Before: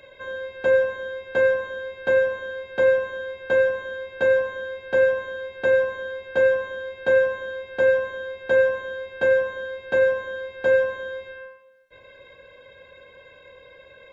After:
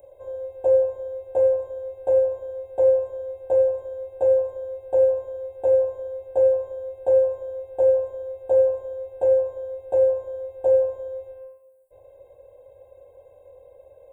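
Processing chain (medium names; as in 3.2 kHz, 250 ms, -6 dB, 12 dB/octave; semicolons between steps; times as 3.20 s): FFT filter 100 Hz 0 dB, 210 Hz -23 dB, 320 Hz -6 dB, 800 Hz +7 dB, 1.3 kHz -29 dB, 1.8 kHz -30 dB, 2.6 kHz -23 dB, 3.8 kHz -28 dB, 5.8 kHz -29 dB, 8.2 kHz +9 dB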